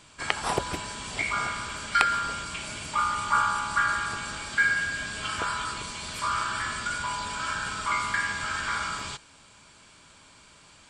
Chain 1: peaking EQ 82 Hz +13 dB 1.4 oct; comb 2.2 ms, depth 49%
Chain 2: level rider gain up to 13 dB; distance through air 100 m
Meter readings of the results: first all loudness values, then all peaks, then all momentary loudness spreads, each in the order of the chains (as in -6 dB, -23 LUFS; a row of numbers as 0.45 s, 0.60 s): -27.0 LUFS, -18.5 LUFS; -3.0 dBFS, -1.5 dBFS; 8 LU, 12 LU